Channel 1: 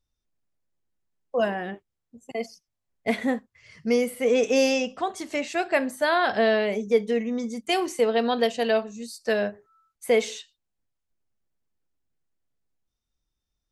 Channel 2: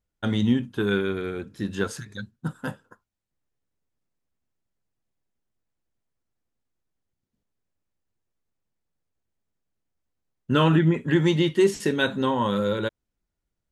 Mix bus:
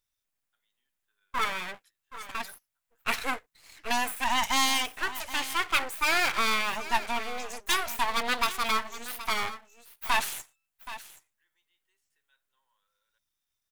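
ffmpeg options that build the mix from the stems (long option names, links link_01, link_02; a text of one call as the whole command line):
ffmpeg -i stem1.wav -i stem2.wav -filter_complex "[0:a]aeval=exprs='abs(val(0))':channel_layout=same,volume=-0.5dB,asplit=3[link_01][link_02][link_03];[link_02]volume=-14.5dB[link_04];[1:a]highpass=950,adelay=300,volume=-15.5dB[link_05];[link_03]apad=whole_len=618199[link_06];[link_05][link_06]sidechaingate=range=-33dB:threshold=-52dB:ratio=16:detection=peak[link_07];[link_04]aecho=0:1:775:1[link_08];[link_01][link_07][link_08]amix=inputs=3:normalize=0,tiltshelf=frequency=880:gain=-10,equalizer=frequency=5000:width_type=o:width=1.6:gain=-7" out.wav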